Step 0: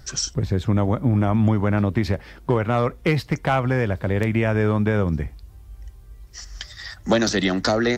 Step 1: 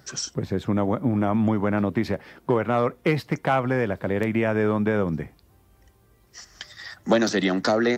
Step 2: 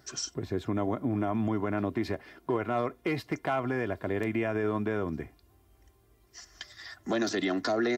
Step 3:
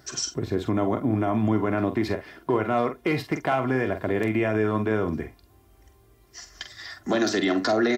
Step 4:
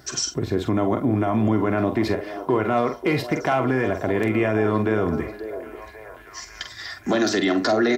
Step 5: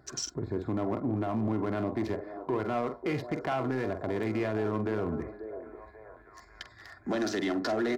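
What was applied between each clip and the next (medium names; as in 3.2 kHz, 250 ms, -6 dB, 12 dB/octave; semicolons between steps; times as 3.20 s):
high-pass 170 Hz 12 dB/octave; peaking EQ 5.7 kHz -5 dB 2.5 oct
comb 2.9 ms, depth 50%; peak limiter -14 dBFS, peak gain reduction 6.5 dB; trim -6 dB
doubling 46 ms -9 dB; trim +5.5 dB
in parallel at +0.5 dB: peak limiter -20 dBFS, peak gain reduction 8 dB; on the sum: repeats whose band climbs or falls 539 ms, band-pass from 460 Hz, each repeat 0.7 oct, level -8.5 dB; trim -1.5 dB
local Wiener filter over 15 samples; saturation -13 dBFS, distortion -21 dB; trim -8 dB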